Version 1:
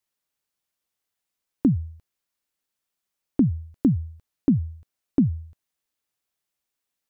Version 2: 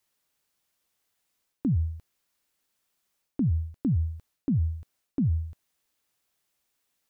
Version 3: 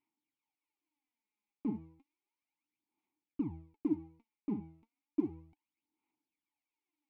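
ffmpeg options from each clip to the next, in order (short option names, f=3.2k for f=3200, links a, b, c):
-af "alimiter=limit=-16dB:level=0:latency=1,areverse,acompressor=threshold=-29dB:ratio=12,areverse,volume=6.5dB"
-filter_complex "[0:a]aeval=exprs='max(val(0),0)':c=same,asplit=3[a][b][c];[a]bandpass=f=300:t=q:w=8,volume=0dB[d];[b]bandpass=f=870:t=q:w=8,volume=-6dB[e];[c]bandpass=f=2.24k:t=q:w=8,volume=-9dB[f];[d][e][f]amix=inputs=3:normalize=0,aphaser=in_gain=1:out_gain=1:delay=4.9:decay=0.7:speed=0.33:type=sinusoidal,volume=5dB"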